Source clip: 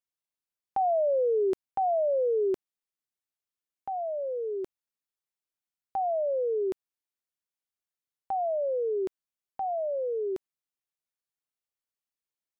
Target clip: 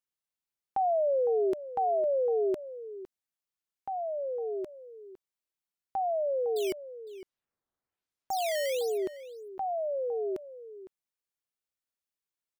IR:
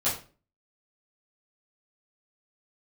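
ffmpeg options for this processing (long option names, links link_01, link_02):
-filter_complex "[0:a]asettb=1/sr,asplit=3[link_01][link_02][link_03];[link_01]atrim=end=6.564[link_04];[link_02]atrim=start=6.56:end=8.98,asetpts=PTS-STARTPTS,afade=type=in:duration=0.004:curve=qsin,afade=type=out:start_time=2.416:duration=0.004:curve=qsin,acrusher=samples=10:mix=1:aa=0.000001:lfo=1:lforange=16:lforate=1.1[link_05];[link_03]atrim=start=8.976[link_06];[link_04][link_05]acrossfade=duration=0.004:curve1=hsin:curve2=qsin[link_07];[link_07][link_06]acrossfade=duration=0.004:curve1=qsin:curve2=hsin,asplit=2[link_08][link_09];[link_09]adelay=507.3,volume=-14dB,highshelf=frequency=4000:gain=-11.4[link_10];[link_08][link_10]amix=inputs=2:normalize=0,volume=-1.5dB"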